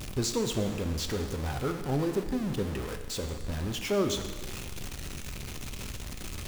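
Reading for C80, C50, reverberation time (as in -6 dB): 9.5 dB, 8.0 dB, 1.5 s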